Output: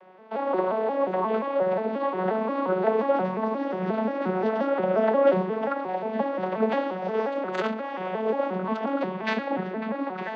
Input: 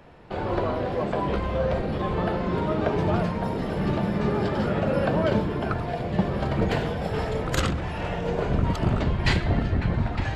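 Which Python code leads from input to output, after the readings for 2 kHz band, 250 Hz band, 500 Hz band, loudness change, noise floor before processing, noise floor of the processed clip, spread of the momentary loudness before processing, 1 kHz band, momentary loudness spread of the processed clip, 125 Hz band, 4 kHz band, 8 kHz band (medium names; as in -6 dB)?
-2.0 dB, -2.0 dB, +3.0 dB, -0.5 dB, -31 dBFS, -34 dBFS, 4 LU, +2.5 dB, 7 LU, -14.0 dB, -8.0 dB, under -15 dB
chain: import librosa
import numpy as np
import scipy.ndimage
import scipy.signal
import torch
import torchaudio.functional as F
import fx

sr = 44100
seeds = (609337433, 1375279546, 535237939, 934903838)

y = fx.vocoder_arp(x, sr, chord='minor triad', root=54, every_ms=177)
y = fx.bandpass_edges(y, sr, low_hz=480.0, high_hz=5200.0)
y = fx.high_shelf(y, sr, hz=3400.0, db=-7.0)
y = y * 10.0 ** (8.5 / 20.0)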